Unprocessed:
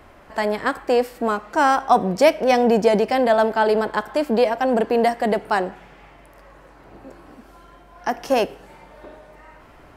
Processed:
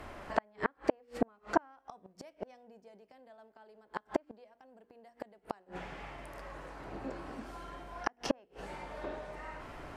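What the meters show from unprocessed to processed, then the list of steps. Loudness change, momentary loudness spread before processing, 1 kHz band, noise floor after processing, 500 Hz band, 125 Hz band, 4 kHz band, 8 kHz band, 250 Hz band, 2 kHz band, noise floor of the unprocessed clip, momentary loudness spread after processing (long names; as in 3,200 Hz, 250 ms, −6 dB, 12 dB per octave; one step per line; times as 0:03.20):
−20.0 dB, 9 LU, −19.5 dB, −71 dBFS, −21.0 dB, −15.5 dB, −19.0 dB, can't be measured, −16.5 dB, −17.0 dB, −48 dBFS, 23 LU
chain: mains-hum notches 60/120/180/240/300/360/420/480/540 Hz
gate with flip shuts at −14 dBFS, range −41 dB
treble cut that deepens with the level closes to 2,100 Hz, closed at −30 dBFS
level +1 dB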